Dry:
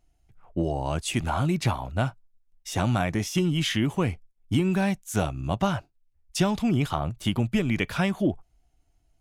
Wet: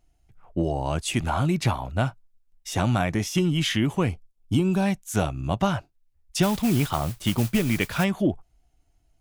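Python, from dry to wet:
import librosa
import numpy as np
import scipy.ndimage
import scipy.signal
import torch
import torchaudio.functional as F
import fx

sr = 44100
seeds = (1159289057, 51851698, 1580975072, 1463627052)

y = fx.peak_eq(x, sr, hz=1900.0, db=-13.5, octaves=0.46, at=(4.09, 4.86))
y = fx.mod_noise(y, sr, seeds[0], snr_db=15, at=(6.42, 8.03), fade=0.02)
y = F.gain(torch.from_numpy(y), 1.5).numpy()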